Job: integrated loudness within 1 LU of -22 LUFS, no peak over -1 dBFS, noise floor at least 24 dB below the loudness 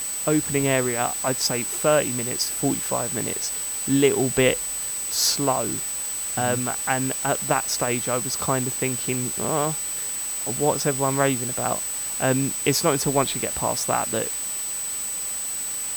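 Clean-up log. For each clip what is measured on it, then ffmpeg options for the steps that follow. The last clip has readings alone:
steady tone 8000 Hz; tone level -27 dBFS; noise floor -29 dBFS; noise floor target -47 dBFS; loudness -23.0 LUFS; peak -5.5 dBFS; loudness target -22.0 LUFS
-> -af "bandreject=f=8k:w=30"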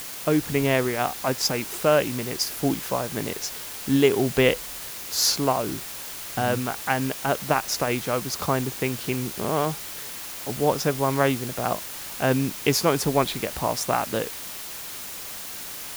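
steady tone none; noise floor -36 dBFS; noise floor target -49 dBFS
-> -af "afftdn=nr=13:nf=-36"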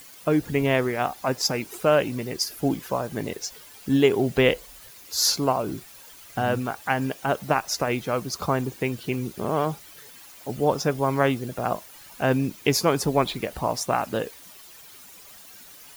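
noise floor -47 dBFS; noise floor target -49 dBFS
-> -af "afftdn=nr=6:nf=-47"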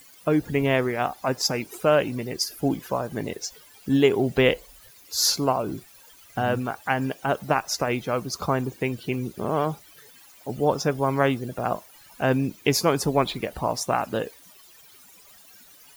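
noise floor -52 dBFS; loudness -25.0 LUFS; peak -6.5 dBFS; loudness target -22.0 LUFS
-> -af "volume=3dB"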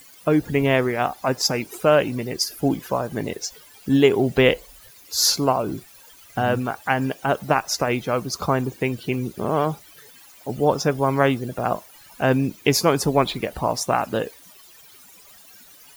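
loudness -22.0 LUFS; peak -3.5 dBFS; noise floor -49 dBFS

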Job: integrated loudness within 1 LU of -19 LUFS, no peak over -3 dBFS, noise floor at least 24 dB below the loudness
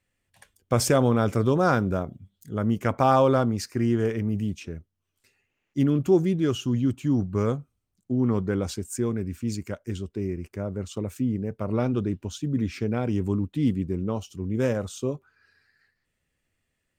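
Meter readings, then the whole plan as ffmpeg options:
loudness -26.0 LUFS; peak -8.5 dBFS; loudness target -19.0 LUFS
-> -af "volume=7dB,alimiter=limit=-3dB:level=0:latency=1"

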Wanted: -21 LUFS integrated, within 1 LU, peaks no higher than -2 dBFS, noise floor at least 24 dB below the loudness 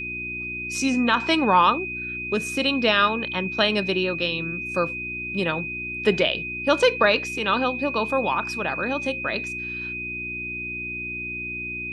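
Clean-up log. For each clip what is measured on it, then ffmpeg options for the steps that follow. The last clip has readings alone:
hum 60 Hz; harmonics up to 360 Hz; hum level -38 dBFS; steady tone 2500 Hz; tone level -29 dBFS; loudness -23.5 LUFS; peak -6.5 dBFS; loudness target -21.0 LUFS
-> -af "bandreject=f=60:t=h:w=4,bandreject=f=120:t=h:w=4,bandreject=f=180:t=h:w=4,bandreject=f=240:t=h:w=4,bandreject=f=300:t=h:w=4,bandreject=f=360:t=h:w=4"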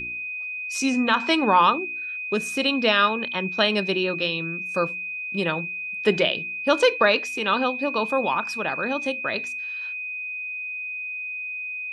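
hum none; steady tone 2500 Hz; tone level -29 dBFS
-> -af "bandreject=f=2.5k:w=30"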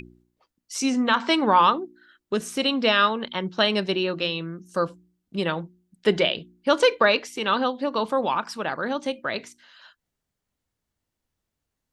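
steady tone none; loudness -23.5 LUFS; peak -7.0 dBFS; loudness target -21.0 LUFS
-> -af "volume=2.5dB"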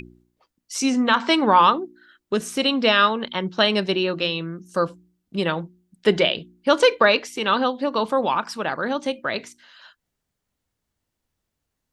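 loudness -21.0 LUFS; peak -4.5 dBFS; noise floor -81 dBFS

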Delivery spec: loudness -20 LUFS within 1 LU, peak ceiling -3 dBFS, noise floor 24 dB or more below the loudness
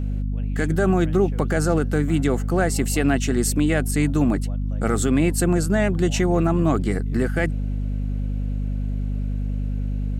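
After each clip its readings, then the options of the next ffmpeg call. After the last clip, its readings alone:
hum 50 Hz; harmonics up to 250 Hz; hum level -22 dBFS; loudness -22.5 LUFS; peak -8.0 dBFS; loudness target -20.0 LUFS
-> -af "bandreject=f=50:t=h:w=6,bandreject=f=100:t=h:w=6,bandreject=f=150:t=h:w=6,bandreject=f=200:t=h:w=6,bandreject=f=250:t=h:w=6"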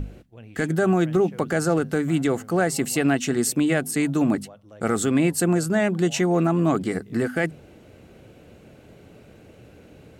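hum none; loudness -22.5 LUFS; peak -10.0 dBFS; loudness target -20.0 LUFS
-> -af "volume=2.5dB"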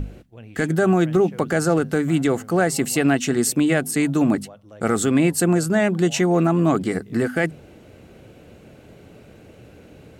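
loudness -20.0 LUFS; peak -7.5 dBFS; noise floor -47 dBFS

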